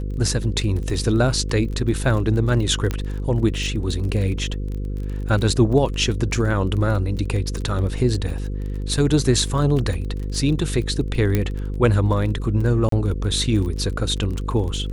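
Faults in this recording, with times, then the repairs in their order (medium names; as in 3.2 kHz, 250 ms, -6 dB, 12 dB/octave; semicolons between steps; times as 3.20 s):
buzz 50 Hz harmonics 10 -26 dBFS
crackle 23 per s -28 dBFS
2.91 s: pop -11 dBFS
11.35 s: pop -7 dBFS
12.89–12.92 s: dropout 33 ms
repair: de-click; de-hum 50 Hz, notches 10; interpolate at 12.89 s, 33 ms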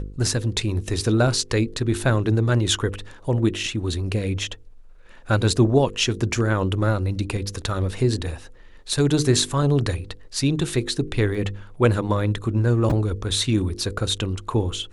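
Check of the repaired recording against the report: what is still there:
11.35 s: pop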